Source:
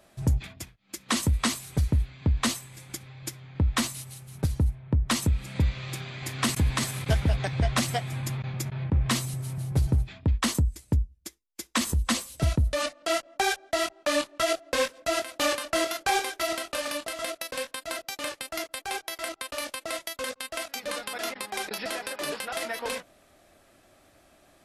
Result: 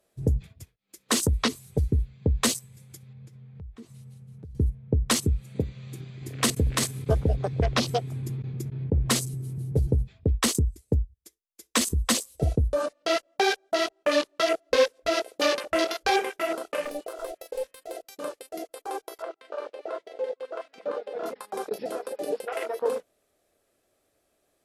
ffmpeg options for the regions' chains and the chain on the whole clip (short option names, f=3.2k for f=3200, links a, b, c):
-filter_complex "[0:a]asettb=1/sr,asplit=3[a][b][c];[a]atrim=end=3.134[d];[b]atrim=start=3.13:end=4.55,asetpts=PTS-STARTPTS,afade=t=in:d=0.004:c=qsin,afade=t=out:st=1.416:d=0.004:c=qsin,aemphasis=mode=reproduction:type=75kf,acompressor=threshold=-40dB:ratio=5:attack=3.2:release=140:knee=1:detection=peak[e];[c]atrim=start=4.546[f];[d][e]acrossfade=d=0.004:c1=hsin:c2=qsin[g];[g][f]acrossfade=d=0.004:c1=qsin:c2=hsin,asettb=1/sr,asplit=3[h][i][j];[h]atrim=end=5.404[k];[i]atrim=start=5.4:end=5.99,asetpts=PTS-STARTPTS,afade=t=in:d=0.004:c=qsin,afade=t=out:st=0.586:d=0.004:c=qsin,highpass=120,bandreject=f=5.1k:w=13[l];[j]atrim=start=5.986[m];[k][l]acrossfade=d=0.004:c1=hsin:c2=qsin[n];[n][m]acrossfade=d=0.004:c1=qsin:c2=hsin,asettb=1/sr,asplit=3[o][p][q];[o]atrim=end=16.844[r];[p]atrim=start=16.84:end=17.94,asetpts=PTS-STARTPTS,afade=t=in:d=0.004:c=qsin,afade=t=out:st=1.096:d=0.004:c=qsin,bandreject=f=183.8:t=h:w=4,bandreject=f=367.6:t=h:w=4,bandreject=f=551.4:t=h:w=4,bandreject=f=735.2:t=h:w=4,bandreject=f=919:t=h:w=4,bandreject=f=1.1028k:t=h:w=4,bandreject=f=1.2866k:t=h:w=4,bandreject=f=1.4704k:t=h:w=4,bandreject=f=1.6542k:t=h:w=4,bandreject=f=1.838k:t=h:w=4,bandreject=f=2.0218k:t=h:w=4,bandreject=f=2.2056k:t=h:w=4,bandreject=f=2.3894k:t=h:w=4,bandreject=f=2.5732k:t=h:w=4,bandreject=f=2.757k:t=h:w=4,bandreject=f=2.9408k:t=h:w=4,bandreject=f=3.1246k:t=h:w=4,aeval=exprs='clip(val(0),-1,0.0178)':c=same[s];[q]atrim=start=17.936[t];[r][s]acrossfade=d=0.004:c1=hsin:c2=qsin[u];[u][t]acrossfade=d=0.004:c1=qsin:c2=hsin,asettb=1/sr,asplit=3[v][w][x];[v]atrim=end=19.224[y];[w]atrim=start=19.22:end=21.26,asetpts=PTS-STARTPTS,afade=t=in:d=0.004:c=qsin,afade=t=out:st=2.036:d=0.004:c=qsin,highpass=170,lowpass=3k,aecho=1:1:210:0.335,atrim=end_sample=89964[z];[x]atrim=start=21.256[aa];[y][z]acrossfade=d=0.004:c1=hsin:c2=qsin[ab];[ab][aa]acrossfade=d=0.004:c1=qsin:c2=hsin,aemphasis=mode=production:type=cd,afwtdn=0.0282,equalizer=f=450:w=2.7:g=12"